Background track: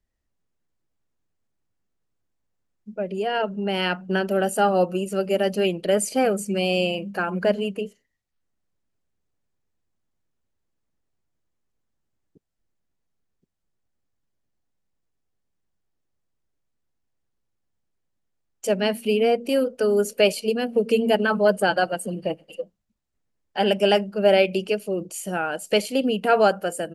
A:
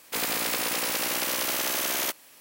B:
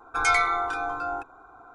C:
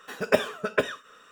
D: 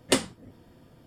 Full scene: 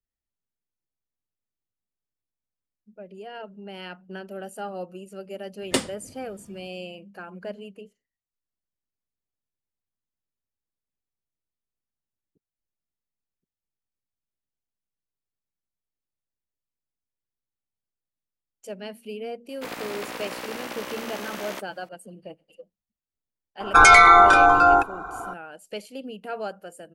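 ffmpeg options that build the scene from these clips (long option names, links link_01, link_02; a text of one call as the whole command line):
ffmpeg -i bed.wav -i cue0.wav -i cue1.wav -i cue2.wav -i cue3.wav -filter_complex "[0:a]volume=-14.5dB[link_01];[1:a]lowpass=frequency=1600:poles=1[link_02];[2:a]alimiter=level_in=16.5dB:limit=-1dB:release=50:level=0:latency=1[link_03];[4:a]atrim=end=1.06,asetpts=PTS-STARTPTS,volume=-1dB,afade=type=in:duration=0.004:curve=hsin,afade=type=out:start_time=1.056:duration=0.004:curve=hsin,adelay=5620[link_04];[link_02]atrim=end=2.4,asetpts=PTS-STARTPTS,volume=-1.5dB,afade=type=in:duration=0.004:curve=hsin,afade=type=out:start_time=2.396:duration=0.004:curve=hsin,adelay=19490[link_05];[link_03]atrim=end=1.74,asetpts=PTS-STARTPTS,volume=-1.5dB,afade=type=in:duration=0.004:curve=hsin,afade=type=out:start_time=1.736:duration=0.004:curve=hsin,adelay=23600[link_06];[link_01][link_04][link_05][link_06]amix=inputs=4:normalize=0" out.wav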